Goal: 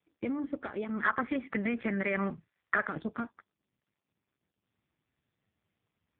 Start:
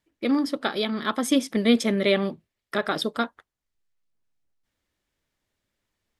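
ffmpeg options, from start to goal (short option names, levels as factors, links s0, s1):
-filter_complex "[0:a]alimiter=limit=0.141:level=0:latency=1:release=261,asubboost=boost=5:cutoff=170,acompressor=threshold=0.0316:ratio=6,lowpass=f=2500:w=0.5412,lowpass=f=2500:w=1.3066,asettb=1/sr,asplit=3[s0][s1][s2];[s0]atrim=end=1.034[s3];[s1]atrim=start=1.03:end=2.87,asetpts=PTS-STARTPTS,afade=t=in:d=0.004:c=qsin,afade=t=out:st=1.836:d=0.004:c=qsin,equalizer=f=1600:t=o:w=2.1:g=13.5[s4];[s2]atrim=start=2.866[s5];[s3][s4]acrossfade=d=0.004:c1=hsin:c2=qsin[s6];[s6][s5]acrossfade=d=0.004:c1=qsin:c2=hsin" -ar 8000 -c:a libopencore_amrnb -b:a 5150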